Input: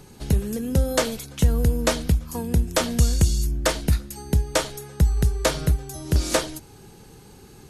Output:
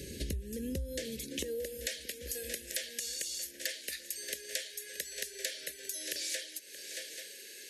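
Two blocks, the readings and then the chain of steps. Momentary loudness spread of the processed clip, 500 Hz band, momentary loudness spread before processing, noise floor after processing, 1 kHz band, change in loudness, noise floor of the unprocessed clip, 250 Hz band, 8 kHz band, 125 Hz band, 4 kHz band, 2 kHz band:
5 LU, −15.0 dB, 5 LU, −50 dBFS, below −35 dB, −14.5 dB, −48 dBFS, −18.0 dB, −7.0 dB, −25.5 dB, −7.5 dB, −10.0 dB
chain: Chebyshev band-stop filter 570–1,700 Hz, order 4
high-pass filter sweep 64 Hz → 930 Hz, 0:00.88–0:01.78
in parallel at +1 dB: brickwall limiter −15.5 dBFS, peak gain reduction 10 dB
on the sum: parametric band 130 Hz −10.5 dB 1.5 octaves
on a send: feedback echo with a long and a short gap by turns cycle 834 ms, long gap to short 3 to 1, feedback 34%, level −22 dB
on the sum: downward compressor 10 to 1, threshold −35 dBFS, peak gain reduction 23.5 dB

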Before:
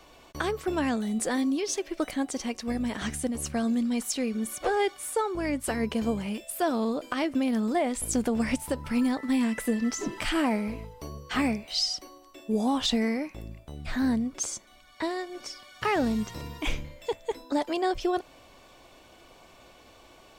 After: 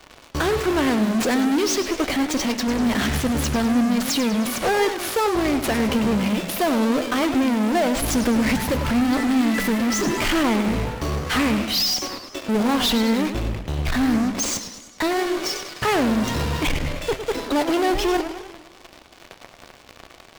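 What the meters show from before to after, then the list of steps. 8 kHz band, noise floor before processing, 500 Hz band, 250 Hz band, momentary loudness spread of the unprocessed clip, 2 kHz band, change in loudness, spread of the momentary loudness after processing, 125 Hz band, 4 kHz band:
+7.0 dB, −55 dBFS, +7.0 dB, +7.5 dB, 9 LU, +9.5 dB, +7.5 dB, 6 LU, +11.5 dB, +9.0 dB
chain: running median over 5 samples
in parallel at −8 dB: fuzz pedal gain 47 dB, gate −48 dBFS
on the sum: flanger 0.82 Hz, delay 6.5 ms, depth 8.4 ms, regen +89%
feedback echo with a swinging delay time 101 ms, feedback 57%, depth 218 cents, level −10 dB
level +3 dB

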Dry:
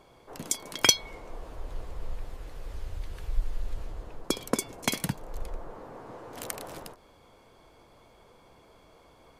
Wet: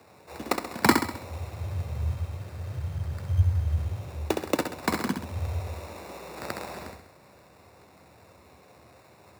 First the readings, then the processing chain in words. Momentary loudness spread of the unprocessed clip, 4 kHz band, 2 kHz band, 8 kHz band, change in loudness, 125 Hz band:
19 LU, −6.5 dB, +3.5 dB, −10.0 dB, +2.0 dB, +13.0 dB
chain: sample-rate reduction 3,100 Hz, jitter 0%
frequency shifter +64 Hz
flutter between parallel walls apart 11.3 metres, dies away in 0.62 s
level +1.5 dB

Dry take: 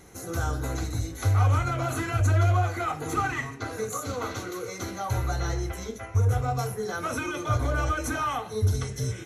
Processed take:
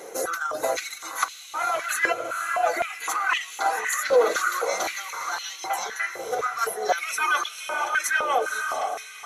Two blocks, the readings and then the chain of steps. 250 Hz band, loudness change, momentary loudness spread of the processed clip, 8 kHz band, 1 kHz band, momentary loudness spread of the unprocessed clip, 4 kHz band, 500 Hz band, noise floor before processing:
−10.5 dB, +2.0 dB, 7 LU, +6.5 dB, +5.5 dB, 10 LU, +7.5 dB, +6.0 dB, −40 dBFS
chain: fade-out on the ending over 1.33 s
reverb reduction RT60 0.95 s
compressor whose output falls as the input rises −34 dBFS, ratio −1
on a send: feedback delay with all-pass diffusion 496 ms, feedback 44%, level −7 dB
on the sum: high-pass on a step sequencer 3.9 Hz 500–2,900 Hz
level +5 dB

